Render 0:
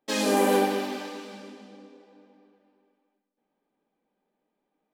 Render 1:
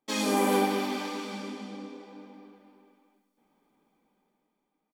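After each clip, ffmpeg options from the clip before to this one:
-af "aecho=1:1:0.9:0.37,dynaudnorm=f=230:g=9:m=3.98,volume=0.708"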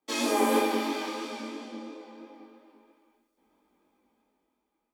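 -af "afreqshift=28,flanger=delay=19:depth=3.9:speed=3,volume=1.5"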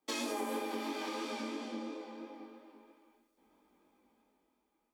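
-af "acompressor=threshold=0.0178:ratio=6"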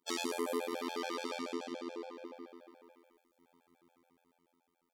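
-af "afftfilt=real='hypot(re,im)*cos(PI*b)':imag='0':win_size=2048:overlap=0.75,afftfilt=real='re*gt(sin(2*PI*7*pts/sr)*(1-2*mod(floor(b*sr/1024/450),2)),0)':imag='im*gt(sin(2*PI*7*pts/sr)*(1-2*mod(floor(b*sr/1024/450),2)),0)':win_size=1024:overlap=0.75,volume=2.24"

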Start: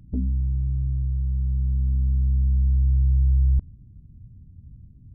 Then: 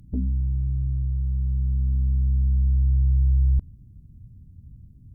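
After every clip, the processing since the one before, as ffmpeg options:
-af "aemphasis=mode=production:type=cd"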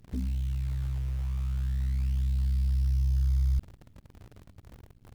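-af "acrusher=bits=8:dc=4:mix=0:aa=0.000001,volume=0.473"

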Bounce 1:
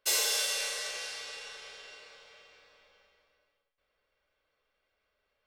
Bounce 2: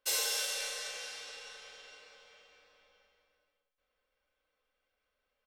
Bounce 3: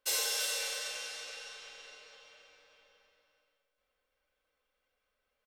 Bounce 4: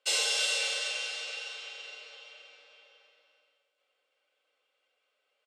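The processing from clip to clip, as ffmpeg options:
-af "aecho=1:1:3.9:0.44,volume=0.596"
-af "aecho=1:1:336:0.355"
-af "highpass=f=360:w=0.5412,highpass=f=360:w=1.3066,equalizer=f=480:t=q:w=4:g=-3,equalizer=f=1000:t=q:w=4:g=-6,equalizer=f=1700:t=q:w=4:g=-6,equalizer=f=2900:t=q:w=4:g=5,equalizer=f=5900:t=q:w=4:g=-6,lowpass=f=8100:w=0.5412,lowpass=f=8100:w=1.3066,volume=2"

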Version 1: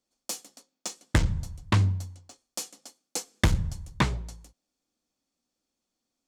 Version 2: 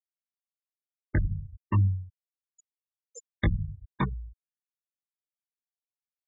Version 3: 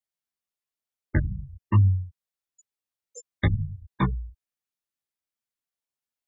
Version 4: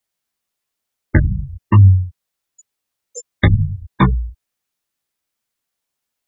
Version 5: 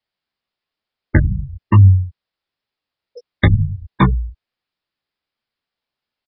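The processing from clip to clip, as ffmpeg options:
-af "flanger=delay=16:depth=5.2:speed=0.36,afftfilt=real='re*gte(hypot(re,im),0.0794)':imag='im*gte(hypot(re,im),0.0794)':win_size=1024:overlap=0.75"
-af "flanger=delay=7.7:depth=8.8:regen=1:speed=1.1:shape=triangular,volume=2"
-af "alimiter=level_in=4.47:limit=0.891:release=50:level=0:latency=1,volume=0.891"
-af "aresample=11025,aresample=44100"

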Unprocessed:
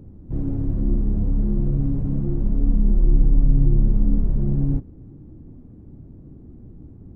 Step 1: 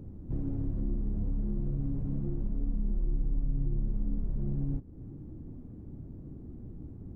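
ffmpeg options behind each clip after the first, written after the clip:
-af "acompressor=threshold=0.0316:ratio=2.5,volume=0.794"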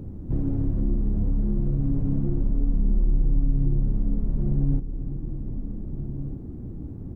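-filter_complex "[0:a]asplit=2[s0][s1];[s1]adelay=1574,volume=0.316,highshelf=f=4000:g=-35.4[s2];[s0][s2]amix=inputs=2:normalize=0,volume=2.51"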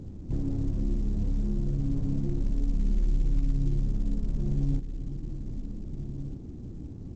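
-af "volume=0.596" -ar 16000 -c:a pcm_mulaw

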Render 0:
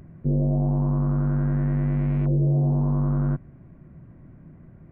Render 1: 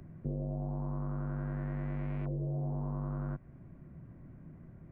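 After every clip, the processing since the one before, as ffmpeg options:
-filter_complex "[0:a]acrossover=split=97|420[s0][s1][s2];[s0]acompressor=threshold=0.0141:ratio=4[s3];[s1]acompressor=threshold=0.0178:ratio=4[s4];[s2]acompressor=threshold=0.01:ratio=4[s5];[s3][s4][s5]amix=inputs=3:normalize=0,volume=0.596"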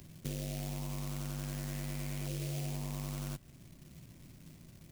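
-af "acrusher=bits=4:mode=log:mix=0:aa=0.000001,aexciter=amount=3.4:drive=2.9:freq=2100,volume=0.668"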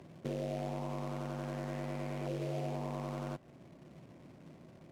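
-af "bandpass=f=610:t=q:w=1:csg=0,volume=3.16"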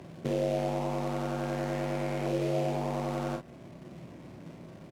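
-af "aecho=1:1:30|47:0.473|0.473,volume=2.11"

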